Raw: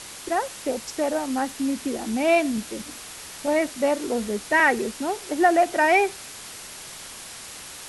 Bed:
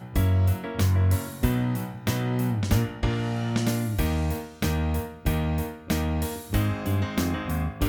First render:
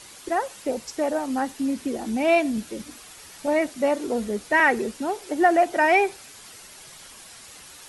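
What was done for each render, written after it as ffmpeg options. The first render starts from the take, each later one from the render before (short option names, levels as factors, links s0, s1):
-af "afftdn=nr=8:nf=-40"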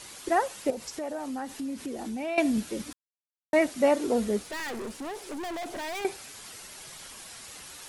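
-filter_complex "[0:a]asettb=1/sr,asplit=3[s0][s1][s2];[s0]atrim=end=0.704[s3];[s1]atrim=start=0.7:end=2.38,asetpts=PTS-STARTPTS,afade=t=in:d=0.004:c=qsin,afade=t=out:st=1.676:d=0.004:c=qsin,acompressor=threshold=0.02:ratio=3:attack=3.2:release=140:knee=1:detection=peak[s4];[s2]atrim=start=2.376[s5];[s3][s4]acrossfade=d=0.004:c1=hsin:c2=qsin[s6];[s6][s5]acrossfade=d=0.004:c1=qsin:c2=hsin,asettb=1/sr,asplit=3[s7][s8][s9];[s7]atrim=end=4.424[s10];[s8]atrim=start=4.42:end=6.05,asetpts=PTS-STARTPTS,afade=t=in:d=0.004:c=qsin,afade=t=out:st=1.626:d=0.004:c=qsin,aeval=exprs='(tanh(50.1*val(0)+0.25)-tanh(0.25))/50.1':c=same[s11];[s9]atrim=start=6.046[s12];[s10][s11]acrossfade=d=0.004:c1=hsin:c2=qsin[s13];[s13][s12]acrossfade=d=0.004:c1=qsin:c2=hsin,asplit=3[s14][s15][s16];[s14]atrim=end=2.93,asetpts=PTS-STARTPTS,afade=t=out:st=2.926:d=0.004:c=hsin[s17];[s15]atrim=start=2.93:end=3.53,asetpts=PTS-STARTPTS,volume=0[s18];[s16]atrim=start=3.53,asetpts=PTS-STARTPTS,afade=t=in:d=0.004:c=hsin[s19];[s17][s18][s19]concat=n=3:v=0:a=1"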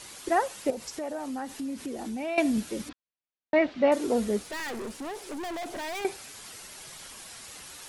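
-filter_complex "[0:a]asettb=1/sr,asplit=3[s0][s1][s2];[s0]atrim=end=2.894[s3];[s1]atrim=start=2.89:end=3.92,asetpts=PTS-STARTPTS,afade=t=in:d=0.004:c=qsin,afade=t=out:st=1.026:d=0.004:c=qsin,lowpass=f=4000:w=0.5412,lowpass=f=4000:w=1.3066[s4];[s2]atrim=start=3.916[s5];[s3][s4]acrossfade=d=0.004:c1=hsin:c2=qsin[s6];[s6][s5]acrossfade=d=0.004:c1=qsin:c2=hsin"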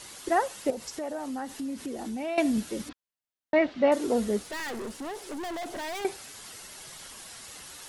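-af "bandreject=f=2400:w=20"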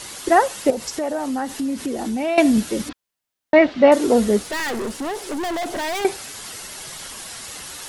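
-af "volume=3.16"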